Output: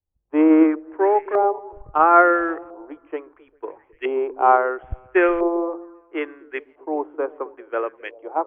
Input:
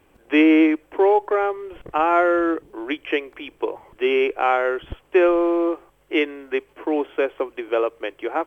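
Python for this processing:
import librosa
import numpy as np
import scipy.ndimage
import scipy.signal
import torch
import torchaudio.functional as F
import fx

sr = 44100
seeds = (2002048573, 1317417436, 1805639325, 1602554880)

y = fx.echo_stepped(x, sr, ms=133, hz=200.0, octaves=0.7, feedback_pct=70, wet_db=-9.0)
y = fx.filter_lfo_lowpass(y, sr, shape='saw_up', hz=0.74, low_hz=780.0, high_hz=2000.0, q=2.4)
y = fx.band_widen(y, sr, depth_pct=100)
y = F.gain(torch.from_numpy(y), -3.5).numpy()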